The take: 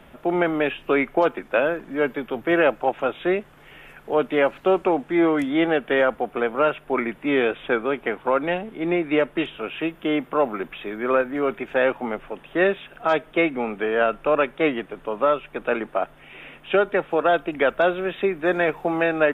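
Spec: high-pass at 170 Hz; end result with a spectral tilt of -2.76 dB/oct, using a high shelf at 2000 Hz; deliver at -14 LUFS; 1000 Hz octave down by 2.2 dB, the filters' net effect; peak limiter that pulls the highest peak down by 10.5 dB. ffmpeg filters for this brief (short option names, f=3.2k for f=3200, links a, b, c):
-af "highpass=170,equalizer=f=1k:t=o:g=-4.5,highshelf=f=2k:g=4.5,volume=13.5dB,alimiter=limit=-3.5dB:level=0:latency=1"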